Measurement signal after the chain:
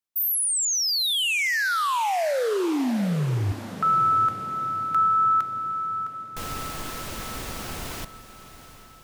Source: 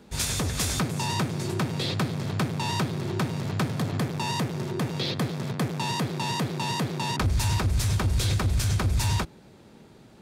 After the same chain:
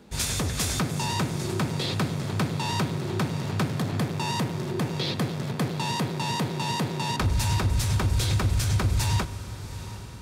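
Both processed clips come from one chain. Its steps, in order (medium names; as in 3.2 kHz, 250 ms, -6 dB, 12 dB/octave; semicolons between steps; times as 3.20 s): echo that smears into a reverb 766 ms, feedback 54%, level -14 dB; spring tank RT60 1.1 s, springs 39 ms, chirp 60 ms, DRR 15.5 dB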